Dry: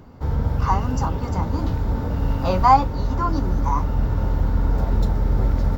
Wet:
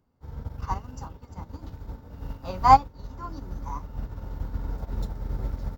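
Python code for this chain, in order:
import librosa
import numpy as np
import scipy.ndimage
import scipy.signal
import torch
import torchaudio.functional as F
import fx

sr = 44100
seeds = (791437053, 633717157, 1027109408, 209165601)

y = fx.high_shelf(x, sr, hz=4600.0, db=6.5)
y = fx.upward_expand(y, sr, threshold_db=-27.0, expansion=2.5)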